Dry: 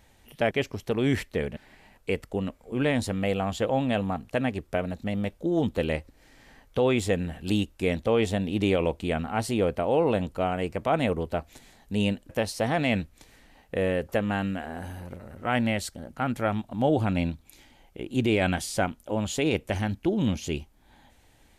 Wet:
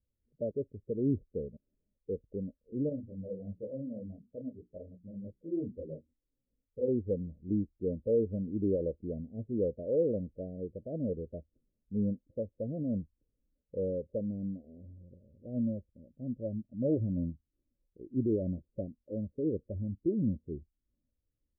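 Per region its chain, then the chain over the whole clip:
2.89–6.88 notches 60/120/180/240/300/360/420 Hz + detuned doubles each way 57 cents
whole clip: steep low-pass 600 Hz 72 dB/oct; spectral expander 1.5:1; gain -4.5 dB

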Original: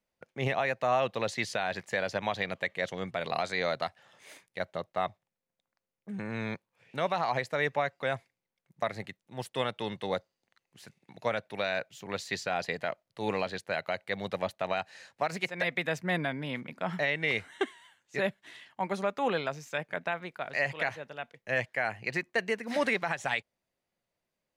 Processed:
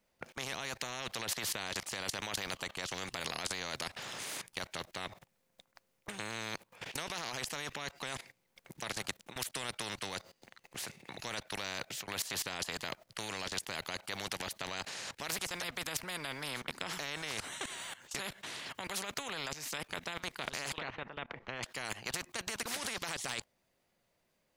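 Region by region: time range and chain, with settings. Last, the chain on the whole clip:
20.78–21.63 LPF 1300 Hz + upward compressor, threshold -39 dBFS
whole clip: level quantiser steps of 21 dB; spectral compressor 4:1; gain +8.5 dB

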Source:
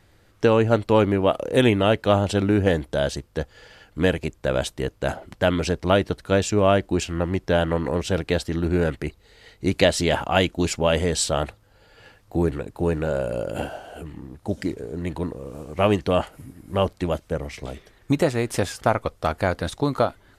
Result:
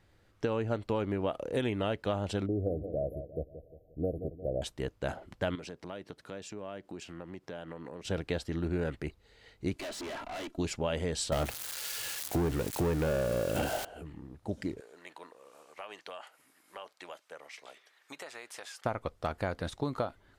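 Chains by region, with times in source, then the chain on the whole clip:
2.46–4.62 brick-wall FIR band-stop 760–11000 Hz + bell 210 Hz -5.5 dB 0.75 oct + analogue delay 0.176 s, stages 1024, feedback 45%, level -12 dB
5.55–8.05 HPF 150 Hz + compressor 3:1, threshold -34 dBFS
9.76–10.58 steep high-pass 160 Hz 72 dB/oct + comb 3 ms, depth 92% + tube stage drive 29 dB, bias 0.55
11.32–13.85 switching spikes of -26 dBFS + sample leveller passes 3
14.8–18.85 HPF 900 Hz + compressor 5:1, threshold -31 dBFS + mismatched tape noise reduction encoder only
whole clip: high shelf 8200 Hz -6.5 dB; compressor, threshold -19 dBFS; gain -8.5 dB

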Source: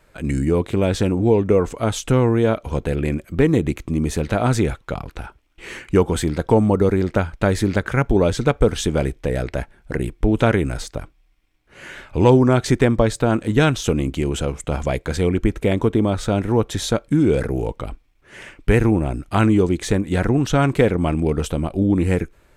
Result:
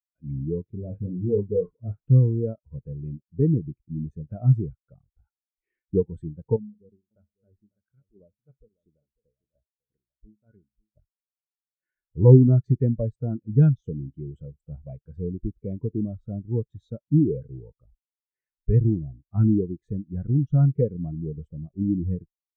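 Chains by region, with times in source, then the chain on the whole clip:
0.76–2.06 CVSD 16 kbps + doubler 39 ms -8 dB + dispersion highs, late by 66 ms, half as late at 870 Hz
6.56–10.97 tremolo 3 Hz, depth 67% + resonator 210 Hz, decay 0.68 s, harmonics odd, mix 70% + echo 0.547 s -10 dB
whole clip: dynamic EQ 140 Hz, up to +5 dB, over -32 dBFS, Q 1.4; spectral expander 2.5:1; gain -1 dB

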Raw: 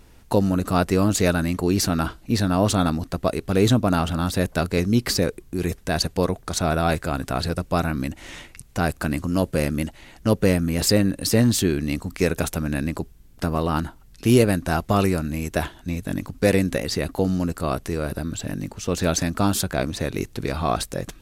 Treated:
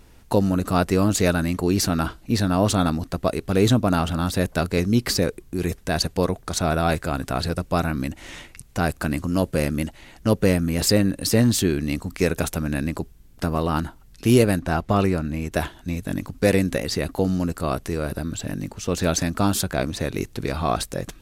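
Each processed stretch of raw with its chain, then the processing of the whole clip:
14.59–15.52 LPF 3300 Hz 6 dB/oct + upward compressor, threshold -31 dBFS
whole clip: dry

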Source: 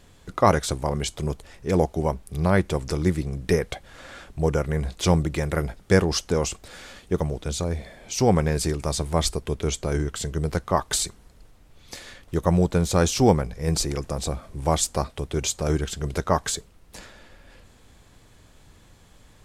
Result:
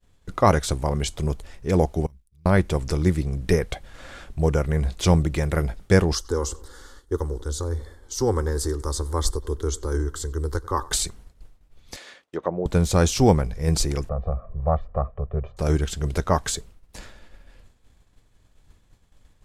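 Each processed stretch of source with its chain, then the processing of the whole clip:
2.06–2.46 G.711 law mismatch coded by A + passive tone stack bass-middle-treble 6-0-2 + compressor 4:1, threshold -48 dBFS
6.15–10.92 fixed phaser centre 660 Hz, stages 6 + darkening echo 94 ms, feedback 53%, low-pass 3300 Hz, level -20 dB
11.96–12.66 high shelf 10000 Hz -11.5 dB + treble ducked by the level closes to 640 Hz, closed at -16.5 dBFS + HPF 380 Hz
14.09–15.57 ladder low-pass 1400 Hz, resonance 20% + comb 1.7 ms, depth 92% + Doppler distortion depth 0.18 ms
whole clip: expander -43 dBFS; low shelf 67 Hz +10.5 dB

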